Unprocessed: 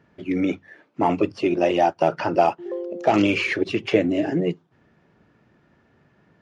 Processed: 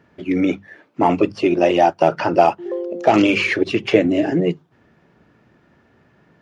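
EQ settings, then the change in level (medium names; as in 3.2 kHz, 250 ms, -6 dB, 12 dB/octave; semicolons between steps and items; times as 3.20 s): hum notches 50/100/150/200 Hz; +4.5 dB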